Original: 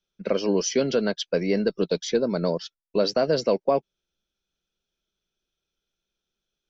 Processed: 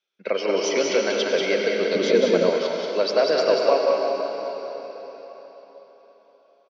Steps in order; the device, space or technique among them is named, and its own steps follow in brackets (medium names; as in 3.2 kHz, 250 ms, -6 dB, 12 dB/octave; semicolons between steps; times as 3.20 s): station announcement (band-pass 450–4900 Hz; peaking EQ 2.2 kHz +6.5 dB 0.39 oct; loudspeakers at several distances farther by 64 m -4 dB, 80 m -12 dB; reverberation RT60 4.3 s, pre-delay 83 ms, DRR 1.5 dB); 1.95–2.50 s: bass shelf 390 Hz +11 dB; trim +2 dB